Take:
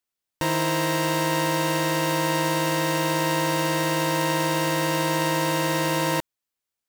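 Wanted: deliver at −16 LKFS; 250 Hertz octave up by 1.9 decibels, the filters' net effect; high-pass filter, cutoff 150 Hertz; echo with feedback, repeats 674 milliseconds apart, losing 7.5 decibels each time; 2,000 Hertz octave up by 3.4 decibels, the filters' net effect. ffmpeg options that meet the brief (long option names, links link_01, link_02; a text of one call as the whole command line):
ffmpeg -i in.wav -af "highpass=150,equalizer=frequency=250:width_type=o:gain=4,equalizer=frequency=2000:width_type=o:gain=4,aecho=1:1:674|1348|2022|2696|3370:0.422|0.177|0.0744|0.0312|0.0131,volume=6dB" out.wav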